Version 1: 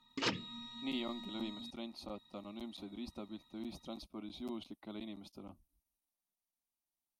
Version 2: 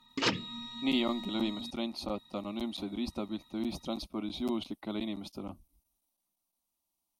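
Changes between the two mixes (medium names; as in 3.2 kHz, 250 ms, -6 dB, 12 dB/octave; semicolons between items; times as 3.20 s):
speech +10.0 dB; background +6.0 dB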